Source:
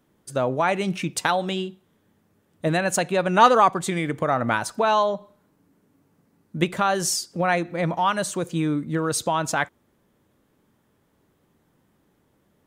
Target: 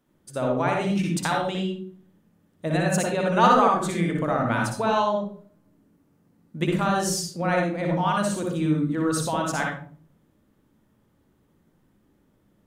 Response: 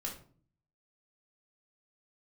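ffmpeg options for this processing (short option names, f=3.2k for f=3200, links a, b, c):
-filter_complex "[0:a]asplit=2[a][b];[1:a]atrim=start_sample=2205,lowshelf=f=360:g=7,adelay=59[c];[b][c]afir=irnorm=-1:irlink=0,volume=-1dB[d];[a][d]amix=inputs=2:normalize=0,volume=-5.5dB"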